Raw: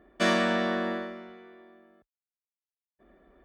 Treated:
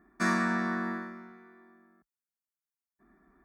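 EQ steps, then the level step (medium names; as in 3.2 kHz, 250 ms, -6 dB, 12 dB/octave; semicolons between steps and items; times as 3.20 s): resonant low shelf 140 Hz -6.5 dB, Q 1.5; static phaser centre 1.3 kHz, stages 4; 0.0 dB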